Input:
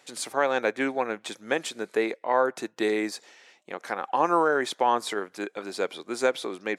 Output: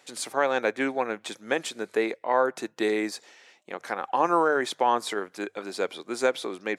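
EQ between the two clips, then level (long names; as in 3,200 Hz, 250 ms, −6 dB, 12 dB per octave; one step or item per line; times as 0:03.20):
mains-hum notches 50/100/150 Hz
0.0 dB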